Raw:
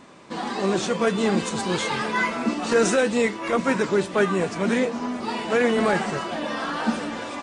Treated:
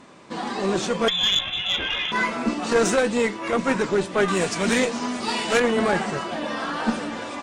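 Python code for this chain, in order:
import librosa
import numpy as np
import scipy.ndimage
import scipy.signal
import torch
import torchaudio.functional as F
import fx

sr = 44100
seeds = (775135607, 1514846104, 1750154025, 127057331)

y = fx.freq_invert(x, sr, carrier_hz=3700, at=(1.08, 2.12))
y = fx.high_shelf(y, sr, hz=2400.0, db=12.0, at=(4.28, 5.6))
y = fx.cheby_harmonics(y, sr, harmonics=(2, 8), levels_db=(-7, -34), full_scale_db=-6.0)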